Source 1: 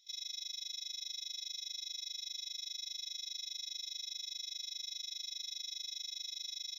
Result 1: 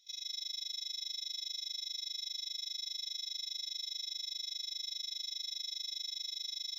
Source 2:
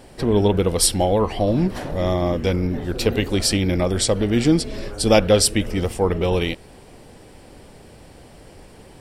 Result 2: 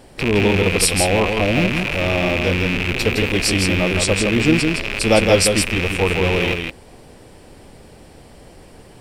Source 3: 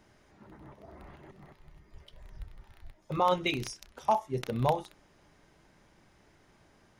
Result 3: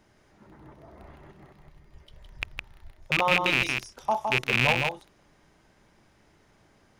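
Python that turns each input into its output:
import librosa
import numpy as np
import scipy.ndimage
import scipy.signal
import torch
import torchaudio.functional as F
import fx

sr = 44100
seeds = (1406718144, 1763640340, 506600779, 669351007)

y = fx.rattle_buzz(x, sr, strikes_db=-35.0, level_db=-10.0)
y = y + 10.0 ** (-4.5 / 20.0) * np.pad(y, (int(162 * sr / 1000.0), 0))[:len(y)]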